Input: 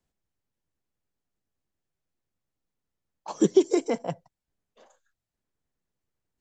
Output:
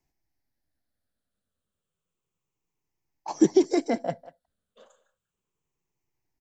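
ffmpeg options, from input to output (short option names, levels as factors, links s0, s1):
-filter_complex "[0:a]afftfilt=real='re*pow(10,10/40*sin(2*PI*(0.73*log(max(b,1)*sr/1024/100)/log(2)-(-0.32)*(pts-256)/sr)))':imag='im*pow(10,10/40*sin(2*PI*(0.73*log(max(b,1)*sr/1024/100)/log(2)-(-0.32)*(pts-256)/sr)))':win_size=1024:overlap=0.75,asplit=2[s0][s1];[s1]adelay=190,highpass=300,lowpass=3400,asoftclip=type=hard:threshold=0.133,volume=0.141[s2];[s0][s2]amix=inputs=2:normalize=0"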